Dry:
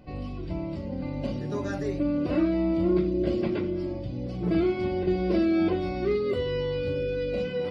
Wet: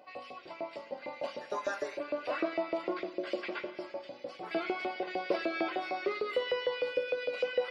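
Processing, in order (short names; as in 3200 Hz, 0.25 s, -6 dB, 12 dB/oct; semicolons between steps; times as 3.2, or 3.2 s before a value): LFO high-pass saw up 6.6 Hz 520–2400 Hz; spring tank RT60 2.1 s, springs 52 ms, chirp 75 ms, DRR 14.5 dB; gain -1.5 dB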